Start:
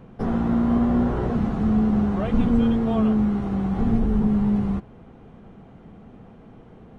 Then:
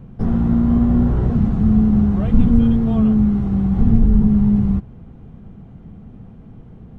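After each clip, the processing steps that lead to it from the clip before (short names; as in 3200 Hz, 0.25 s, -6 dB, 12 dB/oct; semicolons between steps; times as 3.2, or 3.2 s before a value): tone controls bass +14 dB, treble +2 dB; gain -3.5 dB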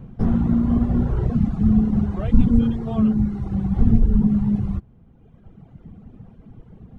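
reverb removal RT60 1.9 s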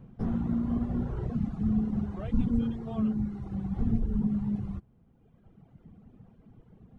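low shelf 99 Hz -5.5 dB; gain -9 dB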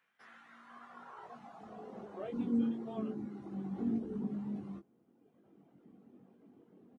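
high-pass sweep 1800 Hz -> 300 Hz, 0.46–2.6; doubler 21 ms -5 dB; gain -6 dB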